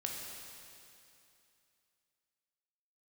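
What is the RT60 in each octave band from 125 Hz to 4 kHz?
2.8, 2.7, 2.7, 2.7, 2.7, 2.7 seconds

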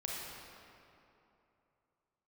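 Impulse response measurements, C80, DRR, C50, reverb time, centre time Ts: −0.5 dB, −4.0 dB, −2.5 dB, 2.9 s, 149 ms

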